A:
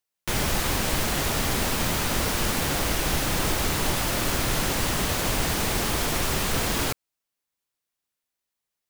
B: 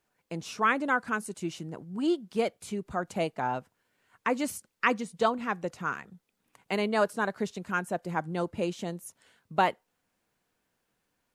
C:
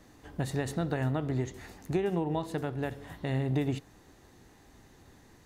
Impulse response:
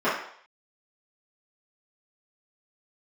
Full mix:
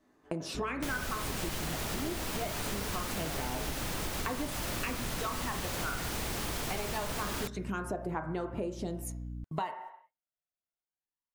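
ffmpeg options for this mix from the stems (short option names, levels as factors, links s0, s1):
-filter_complex "[0:a]aeval=exprs='val(0)+0.0178*(sin(2*PI*60*n/s)+sin(2*PI*2*60*n/s)/2+sin(2*PI*3*60*n/s)/3+sin(2*PI*4*60*n/s)/4+sin(2*PI*5*60*n/s)/5)':c=same,adelay=550,volume=0.668[s0];[1:a]aphaser=in_gain=1:out_gain=1:delay=1.5:decay=0.58:speed=0.24:type=sinusoidal,agate=range=0.0251:threshold=0.00447:ratio=16:detection=peak,acompressor=threshold=0.0224:ratio=2,volume=1.33,asplit=2[s1][s2];[s2]volume=0.0891[s3];[2:a]volume=0.126,asplit=2[s4][s5];[s5]volume=0.316[s6];[3:a]atrim=start_sample=2205[s7];[s3][s6]amix=inputs=2:normalize=0[s8];[s8][s7]afir=irnorm=-1:irlink=0[s9];[s0][s1][s4][s9]amix=inputs=4:normalize=0,acompressor=threshold=0.0251:ratio=6"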